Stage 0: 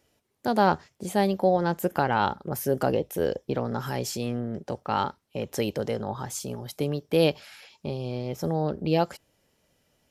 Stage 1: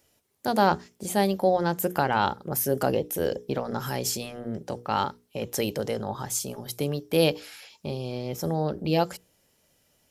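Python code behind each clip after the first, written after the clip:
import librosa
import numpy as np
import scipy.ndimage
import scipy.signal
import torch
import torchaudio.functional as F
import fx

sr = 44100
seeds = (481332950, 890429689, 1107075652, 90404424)

y = fx.high_shelf(x, sr, hz=5600.0, db=9.0)
y = fx.hum_notches(y, sr, base_hz=60, count=8)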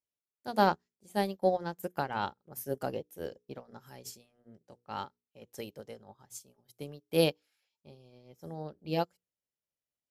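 y = fx.upward_expand(x, sr, threshold_db=-38.0, expansion=2.5)
y = y * librosa.db_to_amplitude(-2.5)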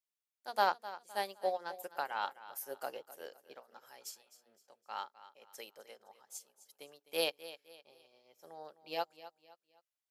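y = scipy.signal.sosfilt(scipy.signal.butter(2, 710.0, 'highpass', fs=sr, output='sos'), x)
y = fx.echo_feedback(y, sr, ms=257, feedback_pct=36, wet_db=-15.5)
y = y * librosa.db_to_amplitude(-1.5)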